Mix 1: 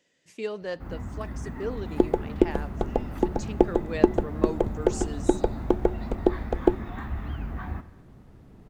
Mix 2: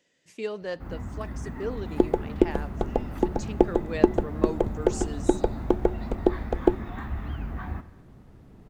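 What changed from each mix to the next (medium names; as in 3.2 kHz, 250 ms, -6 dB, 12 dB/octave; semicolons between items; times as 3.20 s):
no change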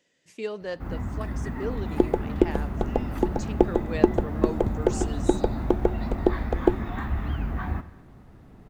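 first sound +4.5 dB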